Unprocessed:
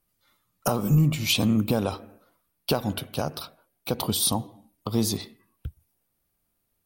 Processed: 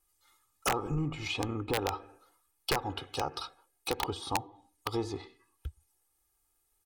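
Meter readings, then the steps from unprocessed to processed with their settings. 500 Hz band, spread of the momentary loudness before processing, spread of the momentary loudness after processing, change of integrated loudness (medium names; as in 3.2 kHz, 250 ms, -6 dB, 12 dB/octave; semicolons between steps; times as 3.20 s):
-6.0 dB, 21 LU, 15 LU, -9.5 dB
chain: graphic EQ 125/500/1000/8000 Hz -9/-4/+5/+10 dB; low-pass that closes with the level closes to 1.7 kHz, closed at -23.5 dBFS; comb 2.4 ms, depth 84%; integer overflow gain 14.5 dB; trim -5 dB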